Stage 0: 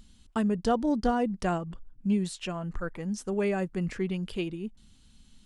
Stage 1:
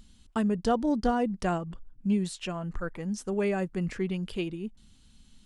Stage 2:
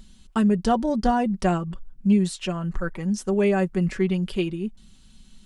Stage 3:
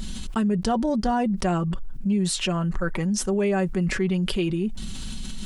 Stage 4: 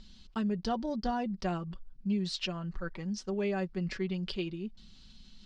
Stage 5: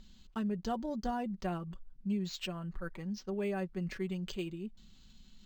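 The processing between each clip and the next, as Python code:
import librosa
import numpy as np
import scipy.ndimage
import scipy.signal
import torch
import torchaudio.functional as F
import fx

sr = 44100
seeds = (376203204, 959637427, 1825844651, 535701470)

y1 = x
y2 = y1 + 0.49 * np.pad(y1, (int(5.3 * sr / 1000.0), 0))[:len(y1)]
y2 = F.gain(torch.from_numpy(y2), 4.5).numpy()
y3 = fx.env_flatten(y2, sr, amount_pct=70)
y3 = F.gain(torch.from_numpy(y3), -5.5).numpy()
y4 = fx.ladder_lowpass(y3, sr, hz=5500.0, resonance_pct=50)
y4 = fx.upward_expand(y4, sr, threshold_db=-42.0, expansion=2.5)
y4 = F.gain(torch.from_numpy(y4), 2.5).numpy()
y5 = np.interp(np.arange(len(y4)), np.arange(len(y4))[::4], y4[::4])
y5 = F.gain(torch.from_numpy(y5), -3.0).numpy()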